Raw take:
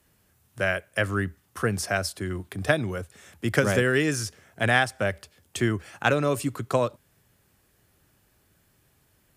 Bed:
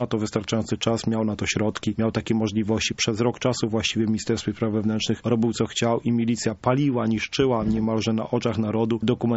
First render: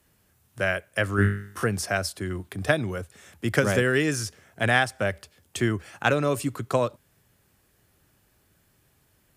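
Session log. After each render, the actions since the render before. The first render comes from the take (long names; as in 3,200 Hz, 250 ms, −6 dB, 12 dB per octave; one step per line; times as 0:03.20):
0:01.16–0:01.64: flutter between parallel walls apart 3.4 metres, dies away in 0.54 s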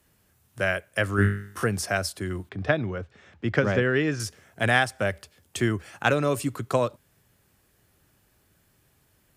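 0:02.49–0:04.20: high-frequency loss of the air 190 metres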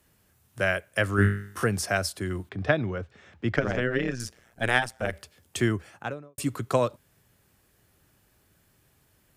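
0:03.56–0:05.13: amplitude modulation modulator 120 Hz, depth 80%
0:05.63–0:06.38: fade out and dull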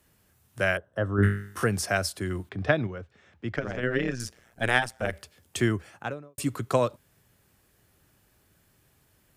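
0:00.77–0:01.23: moving average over 19 samples
0:02.87–0:03.83: clip gain −5.5 dB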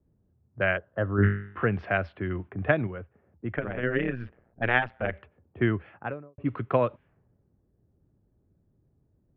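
Butterworth low-pass 2,900 Hz 36 dB per octave
low-pass that shuts in the quiet parts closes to 360 Hz, open at −24.5 dBFS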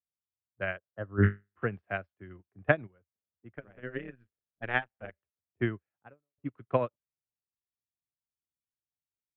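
expander for the loud parts 2.5 to 1, over −46 dBFS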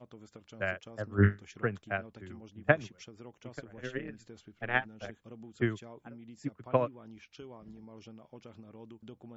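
mix in bed −27.5 dB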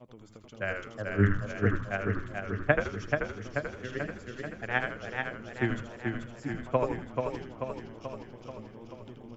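echo with shifted repeats 80 ms, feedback 37%, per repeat −110 Hz, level −6 dB
feedback echo with a swinging delay time 435 ms, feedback 61%, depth 51 cents, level −4.5 dB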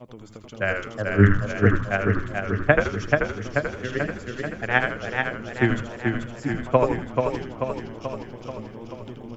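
level +8.5 dB
brickwall limiter −2 dBFS, peak gain reduction 2.5 dB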